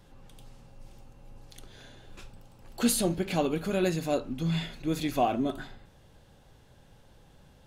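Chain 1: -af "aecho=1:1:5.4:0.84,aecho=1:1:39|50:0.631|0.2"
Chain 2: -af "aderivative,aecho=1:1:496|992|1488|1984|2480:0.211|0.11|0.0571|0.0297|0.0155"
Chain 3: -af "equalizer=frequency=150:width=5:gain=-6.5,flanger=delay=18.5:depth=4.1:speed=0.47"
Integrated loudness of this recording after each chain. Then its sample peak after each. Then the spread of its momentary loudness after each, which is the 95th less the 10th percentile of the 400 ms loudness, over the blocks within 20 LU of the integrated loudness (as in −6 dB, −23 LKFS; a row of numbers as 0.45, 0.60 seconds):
−25.0, −37.0, −32.5 LKFS; −8.5, −14.0, −16.0 dBFS; 8, 26, 7 LU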